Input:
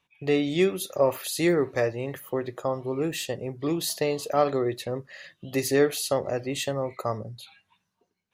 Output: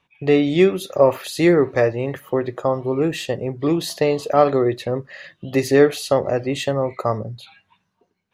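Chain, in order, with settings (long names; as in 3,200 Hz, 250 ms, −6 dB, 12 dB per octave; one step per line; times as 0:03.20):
low-pass filter 2,700 Hz 6 dB per octave
level +8 dB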